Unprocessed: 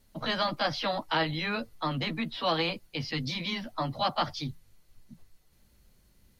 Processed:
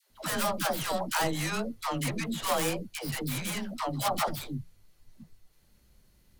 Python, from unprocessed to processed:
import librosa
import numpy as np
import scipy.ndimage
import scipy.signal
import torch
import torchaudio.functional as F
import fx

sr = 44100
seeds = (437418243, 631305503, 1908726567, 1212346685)

y = fx.tracing_dist(x, sr, depth_ms=0.36)
y = fx.dispersion(y, sr, late='lows', ms=107.0, hz=570.0)